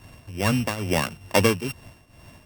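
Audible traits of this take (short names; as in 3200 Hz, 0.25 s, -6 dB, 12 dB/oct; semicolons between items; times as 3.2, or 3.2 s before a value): a buzz of ramps at a fixed pitch in blocks of 16 samples; tremolo triangle 2.3 Hz, depth 80%; Opus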